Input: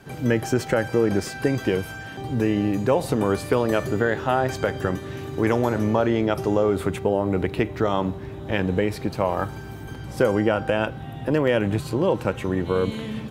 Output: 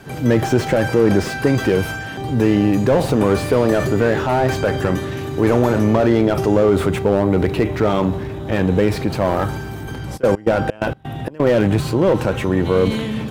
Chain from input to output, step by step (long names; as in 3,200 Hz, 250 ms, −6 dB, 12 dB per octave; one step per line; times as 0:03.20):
transient designer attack −2 dB, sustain +4 dB
0:10.16–0:11.45: gate pattern "x.x.x.xx.x.x" 129 BPM −24 dB
slew-rate limiting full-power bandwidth 76 Hz
level +7 dB